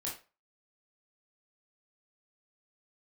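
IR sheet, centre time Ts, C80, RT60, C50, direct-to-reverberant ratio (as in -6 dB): 30 ms, 13.5 dB, 0.30 s, 6.5 dB, -4.5 dB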